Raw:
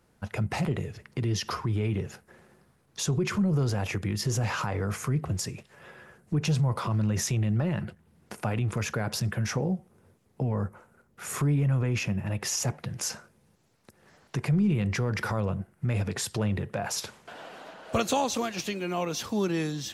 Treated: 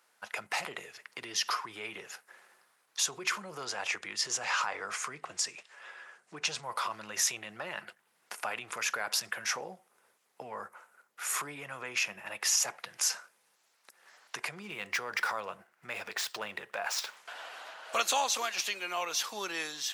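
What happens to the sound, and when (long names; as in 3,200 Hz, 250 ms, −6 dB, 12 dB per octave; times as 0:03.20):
0:03.65–0:06.63: low-pass filter 8,900 Hz 24 dB per octave
0:14.61–0:17.17: running median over 5 samples
whole clip: high-pass filter 1,000 Hz 12 dB per octave; level +3 dB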